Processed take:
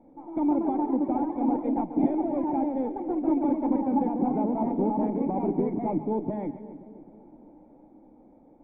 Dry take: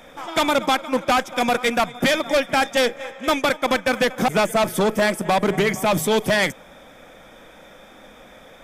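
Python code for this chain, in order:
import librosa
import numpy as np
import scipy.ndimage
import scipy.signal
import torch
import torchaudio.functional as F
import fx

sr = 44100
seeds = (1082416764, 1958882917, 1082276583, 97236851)

y = fx.echo_pitch(x, sr, ms=177, semitones=2, count=3, db_per_echo=-3.0)
y = fx.formant_cascade(y, sr, vowel='u')
y = fx.echo_split(y, sr, split_hz=600.0, low_ms=264, high_ms=137, feedback_pct=52, wet_db=-13)
y = F.gain(torch.from_numpy(y), 3.0).numpy()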